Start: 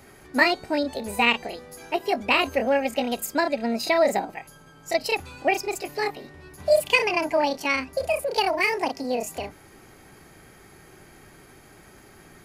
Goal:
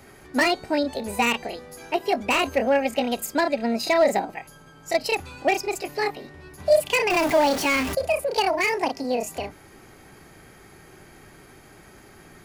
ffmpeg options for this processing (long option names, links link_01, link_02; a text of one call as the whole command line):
ffmpeg -i in.wav -filter_complex "[0:a]asettb=1/sr,asplit=3[link_01][link_02][link_03];[link_01]atrim=end=7.104[link_04];[link_02]atrim=start=7.1:end=7.95,asetpts=PTS-STARTPTS,afade=type=in:duration=0.004:curve=qsin,afade=type=out:start_time=0.846:duration=0.004:curve=qsin,aeval=exprs='val(0)+0.5*0.0562*sgn(val(0))':channel_layout=same[link_05];[link_03]atrim=start=7.946[link_06];[link_04][link_05]acrossfade=duration=0.004:curve1=hsin:curve2=qsin[link_07];[link_07][link_06]acrossfade=duration=0.004:curve1=qsin:curve2=hsin,highshelf=frequency=8000:gain=-2.5,acrossover=split=670[link_08][link_09];[link_09]asoftclip=type=hard:threshold=-20dB[link_10];[link_08][link_10]amix=inputs=2:normalize=0,volume=1.5dB" out.wav